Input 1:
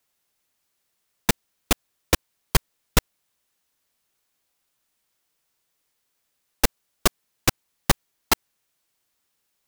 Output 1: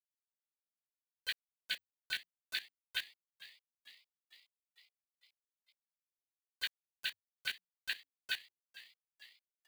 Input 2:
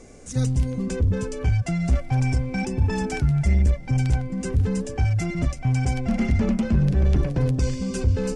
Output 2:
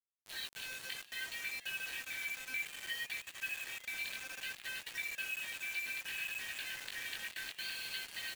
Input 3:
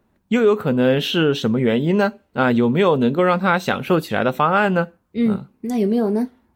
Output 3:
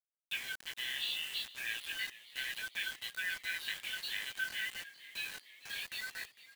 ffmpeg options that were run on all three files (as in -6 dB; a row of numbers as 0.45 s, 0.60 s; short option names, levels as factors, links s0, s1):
-filter_complex "[0:a]afftfilt=real='real(if(between(b,1,1008),(2*floor((b-1)/24)+1)*24-b,b),0)':imag='imag(if(between(b,1,1008),(2*floor((b-1)/24)+1)*24-b,b),0)*if(between(b,1,1008),-1,1)':win_size=2048:overlap=0.75,bandreject=f=2100:w=10,afftfilt=real='re*between(b*sr/4096,1500,4600)':imag='im*between(b*sr/4096,1500,4600)':win_size=4096:overlap=0.75,acompressor=threshold=0.00562:ratio=4,flanger=delay=16.5:depth=5.3:speed=0.61,acrusher=bits=8:mix=0:aa=0.000001,asplit=7[s0][s1][s2][s3][s4][s5][s6];[s1]adelay=453,afreqshift=89,volume=0.133[s7];[s2]adelay=906,afreqshift=178,volume=0.0851[s8];[s3]adelay=1359,afreqshift=267,volume=0.0543[s9];[s4]adelay=1812,afreqshift=356,volume=0.0351[s10];[s5]adelay=2265,afreqshift=445,volume=0.0224[s11];[s6]adelay=2718,afreqshift=534,volume=0.0143[s12];[s0][s7][s8][s9][s10][s11][s12]amix=inputs=7:normalize=0,volume=2.82"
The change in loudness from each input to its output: -15.5 LU, -16.5 LU, -20.0 LU